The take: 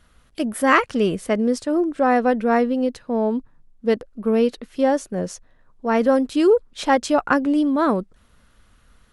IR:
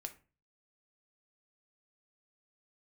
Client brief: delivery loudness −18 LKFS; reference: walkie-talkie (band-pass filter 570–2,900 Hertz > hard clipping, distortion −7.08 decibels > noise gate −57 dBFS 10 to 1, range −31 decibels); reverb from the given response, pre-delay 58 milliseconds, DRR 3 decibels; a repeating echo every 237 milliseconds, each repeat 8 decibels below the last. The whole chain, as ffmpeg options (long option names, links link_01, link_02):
-filter_complex "[0:a]aecho=1:1:237|474|711|948|1185:0.398|0.159|0.0637|0.0255|0.0102,asplit=2[link_01][link_02];[1:a]atrim=start_sample=2205,adelay=58[link_03];[link_02][link_03]afir=irnorm=-1:irlink=0,volume=0.5dB[link_04];[link_01][link_04]amix=inputs=2:normalize=0,highpass=570,lowpass=2900,asoftclip=type=hard:threshold=-20.5dB,agate=range=-31dB:threshold=-57dB:ratio=10,volume=8dB"